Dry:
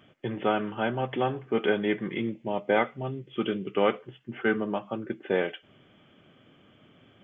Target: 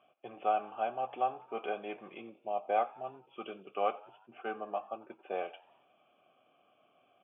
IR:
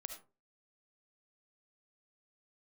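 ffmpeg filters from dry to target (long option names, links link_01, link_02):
-filter_complex "[0:a]asplit=3[link_01][link_02][link_03];[link_01]bandpass=frequency=730:width_type=q:width=8,volume=0dB[link_04];[link_02]bandpass=frequency=1090:width_type=q:width=8,volume=-6dB[link_05];[link_03]bandpass=frequency=2440:width_type=q:width=8,volume=-9dB[link_06];[link_04][link_05][link_06]amix=inputs=3:normalize=0,asplit=5[link_07][link_08][link_09][link_10][link_11];[link_08]adelay=90,afreqshift=59,volume=-22.5dB[link_12];[link_09]adelay=180,afreqshift=118,volume=-26.9dB[link_13];[link_10]adelay=270,afreqshift=177,volume=-31.4dB[link_14];[link_11]adelay=360,afreqshift=236,volume=-35.8dB[link_15];[link_07][link_12][link_13][link_14][link_15]amix=inputs=5:normalize=0,volume=3dB"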